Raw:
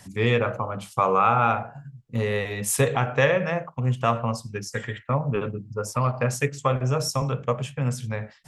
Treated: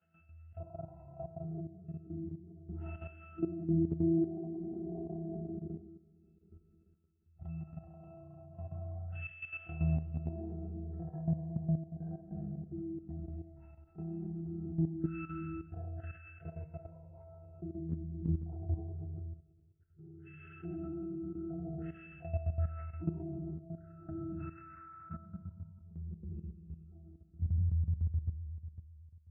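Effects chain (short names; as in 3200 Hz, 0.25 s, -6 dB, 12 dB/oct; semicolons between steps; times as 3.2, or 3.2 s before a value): tape stop at the end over 1.81 s; weighting filter ITU-R 468; FDN reverb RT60 0.62 s, low-frequency decay 1.25×, high-frequency decay 0.55×, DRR -2 dB; step gate ".xx..xxxxxx" 97 bpm -12 dB; wide varispeed 0.289×; compressor 4:1, threshold -30 dBFS, peak gain reduction 17.5 dB; tone controls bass +12 dB, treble -1 dB; octave resonator E, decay 0.58 s; level quantiser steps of 12 dB; HPF 65 Hz; gain +8 dB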